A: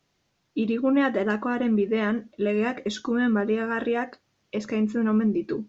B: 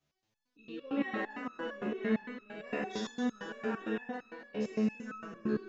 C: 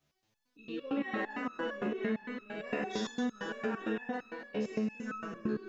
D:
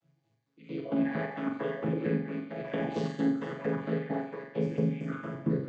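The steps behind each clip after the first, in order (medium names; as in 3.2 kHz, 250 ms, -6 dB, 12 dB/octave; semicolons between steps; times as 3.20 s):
spectral sustain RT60 1.28 s; two-band feedback delay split 390 Hz, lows 384 ms, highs 135 ms, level -4 dB; resonator arpeggio 8.8 Hz 72–1300 Hz; trim -4 dB
compression 6:1, threshold -34 dBFS, peak gain reduction 9 dB; trim +4 dB
vocoder on a held chord major triad, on A2; on a send: flutter echo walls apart 7.5 m, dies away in 0.56 s; on the sum: trim +4.5 dB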